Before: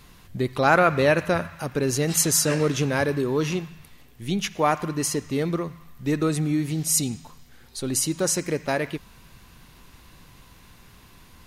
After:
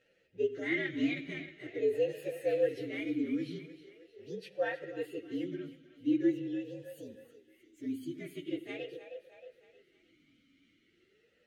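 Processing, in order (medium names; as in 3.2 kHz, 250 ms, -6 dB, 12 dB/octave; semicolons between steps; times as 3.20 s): frequency axis rescaled in octaves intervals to 118%; two-band feedback delay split 410 Hz, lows 89 ms, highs 313 ms, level -13 dB; talking filter e-i 0.43 Hz; trim +1.5 dB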